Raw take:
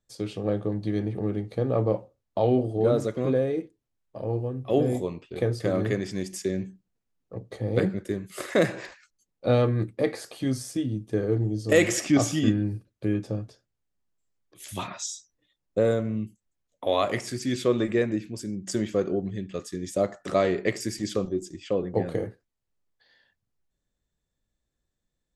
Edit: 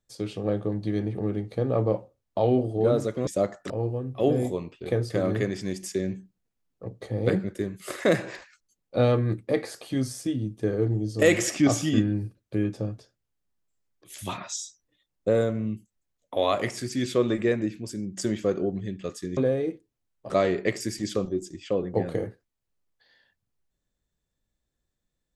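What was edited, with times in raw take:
3.27–4.2 swap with 19.87–20.3

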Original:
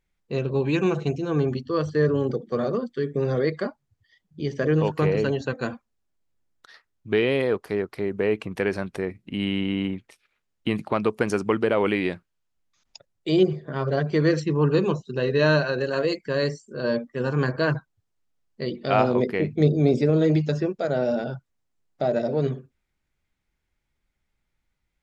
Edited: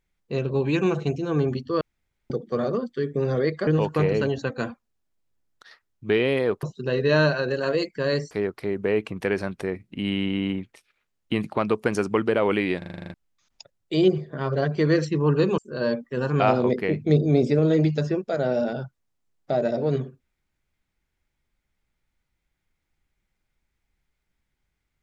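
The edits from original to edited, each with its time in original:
1.81–2.3 room tone
3.67–4.7 cut
12.13 stutter in place 0.04 s, 9 plays
14.93–16.61 move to 7.66
17.43–18.91 cut

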